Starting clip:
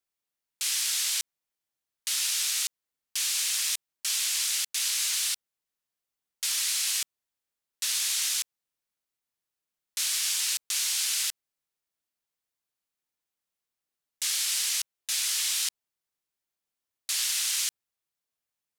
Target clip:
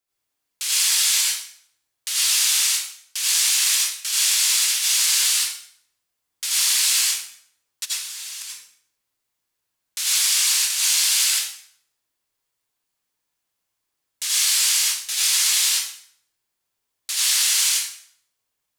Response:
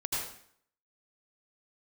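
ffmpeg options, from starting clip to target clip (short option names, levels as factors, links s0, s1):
-filter_complex "[0:a]asplit=3[s0][s1][s2];[s0]afade=t=out:st=7.84:d=0.02[s3];[s1]agate=range=0.0224:threshold=0.141:ratio=3:detection=peak,afade=t=in:st=7.84:d=0.02,afade=t=out:st=8.41:d=0.02[s4];[s2]afade=t=in:st=8.41:d=0.02[s5];[s3][s4][s5]amix=inputs=3:normalize=0[s6];[1:a]atrim=start_sample=2205[s7];[s6][s7]afir=irnorm=-1:irlink=0,volume=1.58"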